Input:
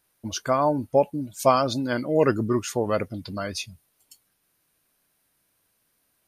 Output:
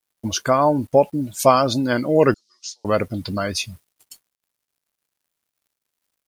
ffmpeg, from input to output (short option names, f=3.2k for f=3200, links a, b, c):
-filter_complex "[0:a]asplit=2[a][b];[b]acompressor=threshold=-31dB:ratio=6,volume=-2.5dB[c];[a][c]amix=inputs=2:normalize=0,acrusher=bits=8:mix=0:aa=0.5,asettb=1/sr,asplit=3[d][e][f];[d]atrim=end=2.344[g];[e]atrim=start=2.34:end=2.85,asetpts=PTS-STARTPTS,afade=t=in:d=0.004:c=qsin,afade=t=out:st=0.506:d=0.004:c=qsin,asuperpass=centerf=5000:order=4:qfactor=2.4[h];[f]atrim=start=2.846[i];[g][h]acrossfade=d=0.004:c1=hsin:c2=qsin[j];[j][i]acrossfade=d=0.004:c1=qsin:c2=hsin,volume=3.5dB"